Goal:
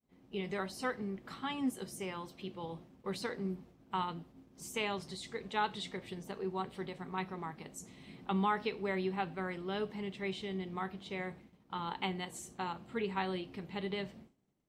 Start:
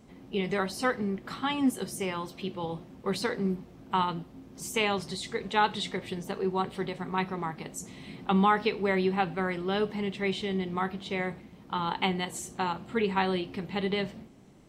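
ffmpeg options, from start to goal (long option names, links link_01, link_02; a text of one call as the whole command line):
ffmpeg -i in.wav -af "agate=range=-33dB:threshold=-44dB:ratio=3:detection=peak,volume=-8.5dB" out.wav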